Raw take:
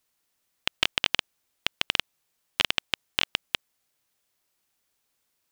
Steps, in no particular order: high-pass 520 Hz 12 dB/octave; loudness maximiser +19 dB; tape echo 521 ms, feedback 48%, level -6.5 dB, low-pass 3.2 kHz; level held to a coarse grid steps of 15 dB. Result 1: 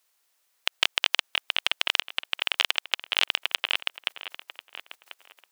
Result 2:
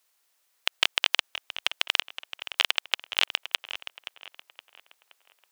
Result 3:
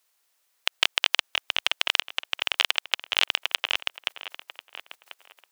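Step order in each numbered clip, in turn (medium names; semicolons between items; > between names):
tape echo > level held to a coarse grid > loudness maximiser > high-pass; level held to a coarse grid > loudness maximiser > high-pass > tape echo; high-pass > tape echo > level held to a coarse grid > loudness maximiser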